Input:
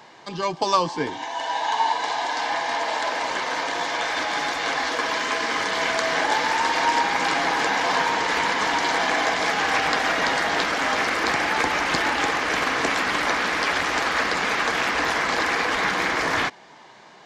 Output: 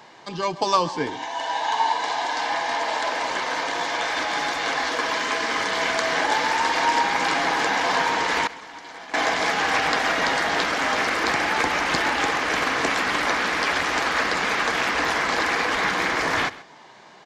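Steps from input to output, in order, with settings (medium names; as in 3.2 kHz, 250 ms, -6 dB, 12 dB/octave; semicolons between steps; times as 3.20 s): 8.47–9.14 s: expander -10 dBFS; delay 132 ms -18.5 dB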